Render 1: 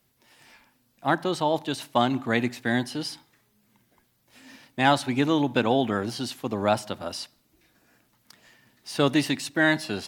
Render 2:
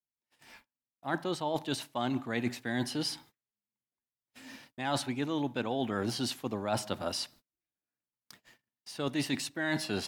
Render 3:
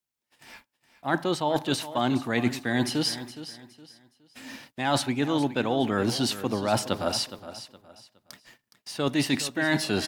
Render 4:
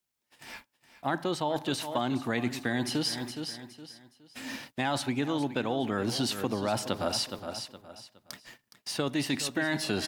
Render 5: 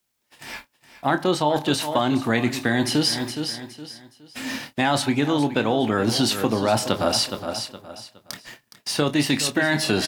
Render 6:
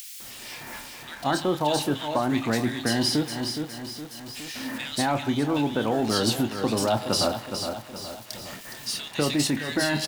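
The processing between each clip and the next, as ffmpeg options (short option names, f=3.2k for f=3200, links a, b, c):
-af "agate=range=-36dB:threshold=-54dB:ratio=16:detection=peak,areverse,acompressor=threshold=-28dB:ratio=12,areverse"
-af "aecho=1:1:416|832|1248:0.211|0.0634|0.019,volume=7dB"
-af "acompressor=threshold=-29dB:ratio=6,volume=3dB"
-filter_complex "[0:a]asplit=2[a][b];[b]adelay=27,volume=-10dB[c];[a][c]amix=inputs=2:normalize=0,volume=8.5dB"
-filter_complex "[0:a]aeval=exprs='val(0)+0.5*0.0237*sgn(val(0))':c=same,acompressor=mode=upward:threshold=-34dB:ratio=2.5,acrossover=split=2100[a][b];[a]adelay=200[c];[c][b]amix=inputs=2:normalize=0,volume=-4dB"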